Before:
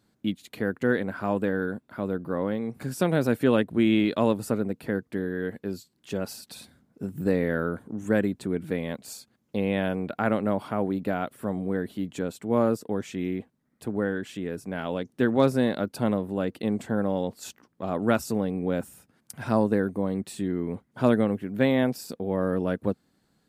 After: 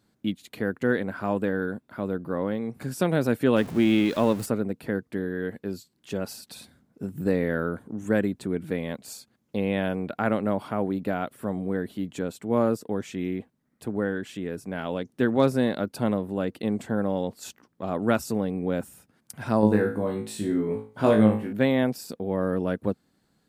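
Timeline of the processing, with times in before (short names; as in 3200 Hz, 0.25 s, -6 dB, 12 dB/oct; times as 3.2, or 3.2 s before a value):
3.56–4.46 zero-crossing step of -34.5 dBFS
19.61–21.53 flutter echo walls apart 3.2 m, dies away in 0.37 s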